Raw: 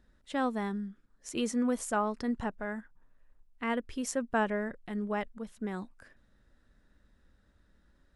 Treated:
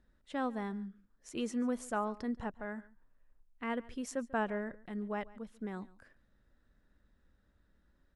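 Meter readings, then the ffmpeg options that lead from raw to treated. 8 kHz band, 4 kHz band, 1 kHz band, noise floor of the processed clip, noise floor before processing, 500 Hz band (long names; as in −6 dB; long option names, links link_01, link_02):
−9.0 dB, −6.5 dB, −4.5 dB, −72 dBFS, −68 dBFS, −4.5 dB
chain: -af "highshelf=frequency=4100:gain=-5.5,aecho=1:1:142:0.0891,volume=-4.5dB"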